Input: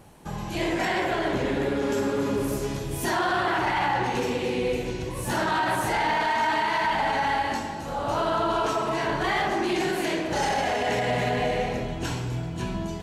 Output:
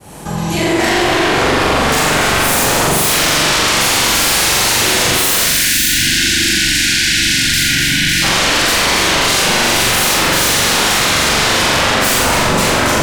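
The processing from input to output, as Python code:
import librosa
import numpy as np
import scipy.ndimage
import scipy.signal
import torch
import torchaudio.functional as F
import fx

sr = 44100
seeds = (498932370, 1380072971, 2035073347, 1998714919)

y = fx.fade_in_head(x, sr, length_s=3.67)
y = fx.highpass(y, sr, hz=46.0, slope=6)
y = fx.peak_eq(y, sr, hz=9000.0, db=6.5, octaves=1.4)
y = fx.echo_filtered(y, sr, ms=284, feedback_pct=49, hz=2000.0, wet_db=-3.0)
y = fx.rider(y, sr, range_db=4, speed_s=0.5)
y = fx.graphic_eq(y, sr, hz=(250, 500, 4000), db=(-12, -3, 11), at=(3.8, 5.9))
y = fx.fold_sine(y, sr, drive_db=18, ceiling_db=-12.5)
y = fx.spec_box(y, sr, start_s=5.44, length_s=2.79, low_hz=350.0, high_hz=1400.0, gain_db=-27)
y = fx.room_flutter(y, sr, wall_m=7.3, rt60_s=0.94)
y = fx.env_flatten(y, sr, amount_pct=50)
y = y * 10.0 ** (-1.5 / 20.0)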